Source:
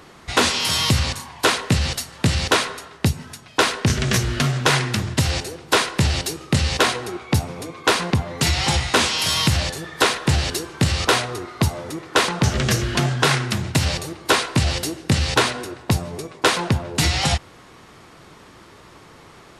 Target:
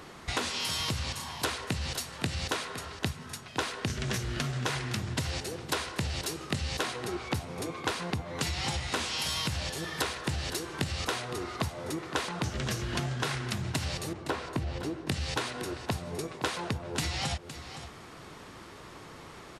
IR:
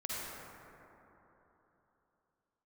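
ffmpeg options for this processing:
-filter_complex "[0:a]asettb=1/sr,asplit=3[link_01][link_02][link_03];[link_01]atrim=end=14.134[link_04];[link_02]atrim=start=14.13:end=15.07,asetpts=PTS-STARTPTS,afade=type=in:duration=0.004:curve=qsin,afade=type=out:start_time=0.936:duration=0.004:curve=qsin,lowpass=frequency=1000:poles=1[link_05];[link_03]atrim=start=15.066[link_06];[link_04][link_05]acrossfade=duration=0.004:curve1=hsin:curve2=qsin[link_07];[link_07][link_06]acrossfade=duration=0.004:curve1=qsin:curve2=hsin,acompressor=threshold=-28dB:ratio=6,asplit=2[link_08][link_09];[link_09]aecho=0:1:514:0.237[link_10];[link_08][link_10]amix=inputs=2:normalize=0,volume=-2dB"

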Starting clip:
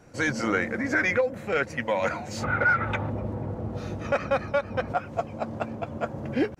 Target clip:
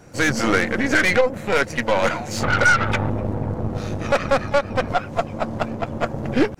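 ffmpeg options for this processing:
ffmpeg -i in.wav -filter_complex "[0:a]bass=frequency=250:gain=1,treble=frequency=4000:gain=3,aeval=exprs='0.211*(cos(1*acos(clip(val(0)/0.211,-1,1)))-cos(1*PI/2))+0.0266*(cos(6*acos(clip(val(0)/0.211,-1,1)))-cos(6*PI/2))':channel_layout=same,asplit=2[link_01][link_02];[link_02]asetrate=66075,aresample=44100,atempo=0.66742,volume=-18dB[link_03];[link_01][link_03]amix=inputs=2:normalize=0,volume=6dB" out.wav

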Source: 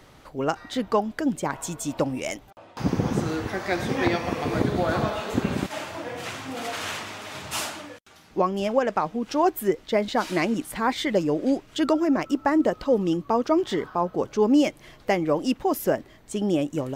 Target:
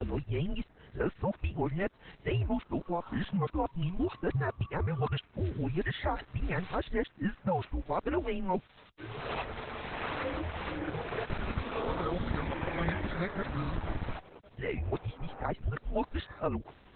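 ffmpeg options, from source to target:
ffmpeg -i in.wav -filter_complex "[0:a]areverse,agate=range=-33dB:threshold=-48dB:ratio=3:detection=peak,highpass=78,acrossover=split=1100|2600[link_01][link_02][link_03];[link_01]acompressor=threshold=-31dB:ratio=4[link_04];[link_02]acompressor=threshold=-35dB:ratio=4[link_05];[link_03]acompressor=threshold=-51dB:ratio=4[link_06];[link_04][link_05][link_06]amix=inputs=3:normalize=0,afreqshift=-180" -ar 48000 -c:a libopus -b:a 8k out.opus

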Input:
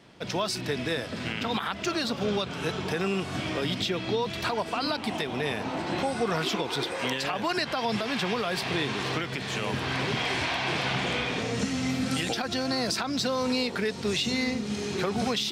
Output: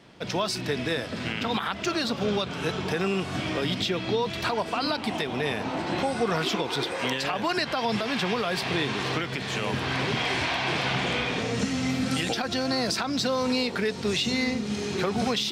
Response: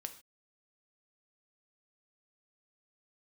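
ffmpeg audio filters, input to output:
-filter_complex "[0:a]asplit=2[link_01][link_02];[1:a]atrim=start_sample=2205,lowpass=7900[link_03];[link_02][link_03]afir=irnorm=-1:irlink=0,volume=-10dB[link_04];[link_01][link_04]amix=inputs=2:normalize=0"

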